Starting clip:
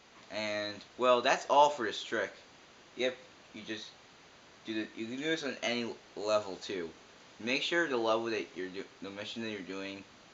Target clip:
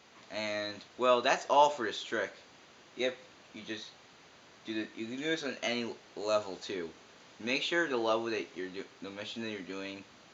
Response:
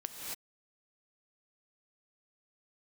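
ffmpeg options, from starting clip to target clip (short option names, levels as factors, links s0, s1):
-af "highpass=66"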